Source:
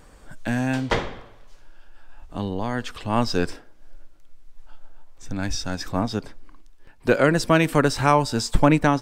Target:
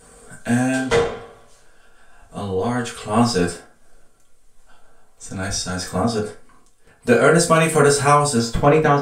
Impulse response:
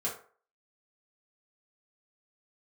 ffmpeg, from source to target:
-filter_complex "[0:a]asetnsamples=n=441:p=0,asendcmd='8.39 equalizer g -2.5',equalizer=f=8.9k:t=o:w=0.86:g=14.5[a];[1:a]atrim=start_sample=2205,afade=t=out:st=0.19:d=0.01,atrim=end_sample=8820[b];[a][b]afir=irnorm=-1:irlink=0,volume=-1dB"

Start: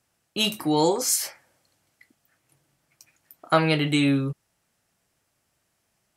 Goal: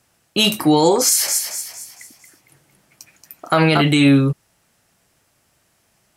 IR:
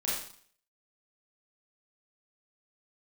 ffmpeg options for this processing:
-filter_complex "[0:a]asettb=1/sr,asplit=3[a][b][c];[a]atrim=end=1.054[d];[b]atrim=start=1.05:end=3.82,asetpts=PTS-STARTPTS,afade=t=in:d=0.004:c=qsin,afade=t=out:st=2.766:d=0.004:c=qsin,asplit=6[e][f][g][h][i][j];[f]adelay=228,afreqshift=56,volume=-7dB[k];[g]adelay=456,afreqshift=112,volume=-14.5dB[l];[h]adelay=684,afreqshift=168,volume=-22.1dB[m];[i]adelay=912,afreqshift=224,volume=-29.6dB[n];[j]adelay=1140,afreqshift=280,volume=-37.1dB[o];[e][k][l][m][n][o]amix=inputs=6:normalize=0,atrim=end_sample=122157[p];[c]atrim=start=3.816[q];[d][p]acrossfade=d=0.004:c1=hsin:c2=qsin[r];[r][q]acrossfade=d=0.004:c1=qsin:c2=hsin,alimiter=level_in=14dB:limit=-1dB:release=50:level=0:latency=1,volume=-3.5dB"

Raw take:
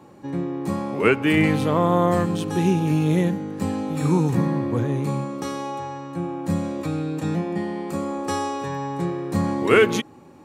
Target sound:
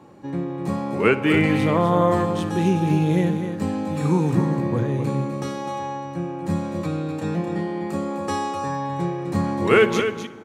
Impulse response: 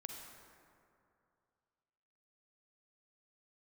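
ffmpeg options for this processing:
-filter_complex "[0:a]highshelf=f=8.4k:g=-7.5,aecho=1:1:254:0.376,asplit=2[a][b];[1:a]atrim=start_sample=2205,adelay=59[c];[b][c]afir=irnorm=-1:irlink=0,volume=-12.5dB[d];[a][d]amix=inputs=2:normalize=0"

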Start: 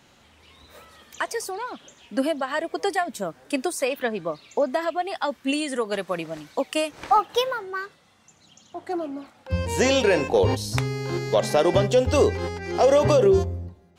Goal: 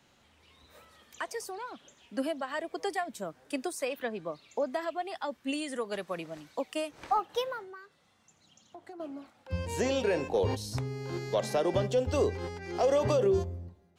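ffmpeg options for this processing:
-filter_complex "[0:a]acrossover=split=350|970[a][b][c];[c]alimiter=limit=-18.5dB:level=0:latency=1:release=417[d];[a][b][d]amix=inputs=3:normalize=0,asettb=1/sr,asplit=3[e][f][g];[e]atrim=end=7.634[h];[f]atrim=start=7.63:end=9,asetpts=PTS-STARTPTS,afade=t=in:d=0.004:c=qsin,afade=t=out:st=1.366:d=0.004:c=qsin,acompressor=threshold=-36dB:ratio=10[i];[g]atrim=start=8.996[j];[h][i]acrossfade=d=0.004:c1=hsin:c2=qsin[k];[k][j]acrossfade=d=0.004:c1=qsin:c2=hsin,volume=-8.5dB"

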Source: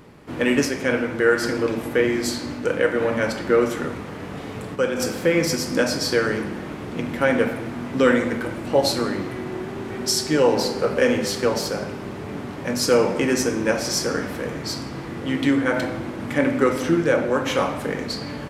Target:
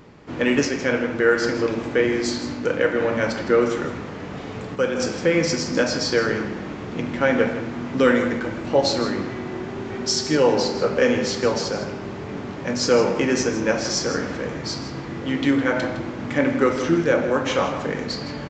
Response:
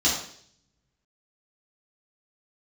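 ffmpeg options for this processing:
-filter_complex "[0:a]asplit=2[a][b];[b]aecho=0:1:160:0.237[c];[a][c]amix=inputs=2:normalize=0,aresample=16000,aresample=44100"

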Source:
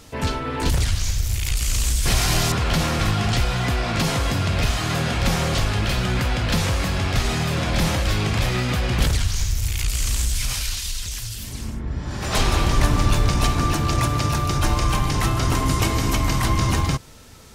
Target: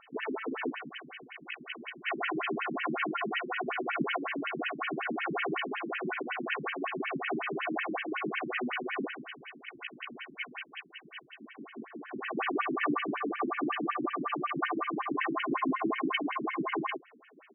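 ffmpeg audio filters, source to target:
-af "aecho=1:1:2.7:0.65,afftfilt=real='re*between(b*sr/1024,230*pow(2300/230,0.5+0.5*sin(2*PI*5.4*pts/sr))/1.41,230*pow(2300/230,0.5+0.5*sin(2*PI*5.4*pts/sr))*1.41)':imag='im*between(b*sr/1024,230*pow(2300/230,0.5+0.5*sin(2*PI*5.4*pts/sr))/1.41,230*pow(2300/230,0.5+0.5*sin(2*PI*5.4*pts/sr))*1.41)':win_size=1024:overlap=0.75,volume=-1.5dB"

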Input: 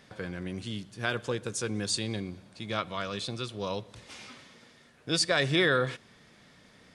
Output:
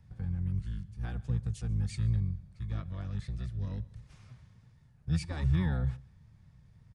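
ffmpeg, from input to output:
-filter_complex "[0:a]asplit=2[a][b];[b]adelay=139.9,volume=-23dB,highshelf=f=4k:g=-3.15[c];[a][c]amix=inputs=2:normalize=0,asplit=2[d][e];[e]asetrate=22050,aresample=44100,atempo=2,volume=-1dB[f];[d][f]amix=inputs=2:normalize=0,bass=f=250:g=-1,treble=f=4k:g=8,acrossover=split=260|1800[g][h][i];[g]acontrast=31[j];[j][h][i]amix=inputs=3:normalize=0,firequalizer=gain_entry='entry(140,0);entry(250,-20);entry(1800,-20);entry(3200,-25)':delay=0.05:min_phase=1"

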